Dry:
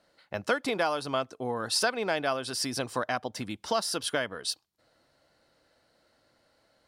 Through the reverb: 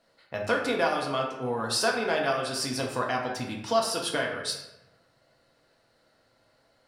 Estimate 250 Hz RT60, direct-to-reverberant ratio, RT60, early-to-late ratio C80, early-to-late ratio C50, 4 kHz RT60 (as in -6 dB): 1.1 s, -1.5 dB, 1.0 s, 6.5 dB, 4.0 dB, 0.65 s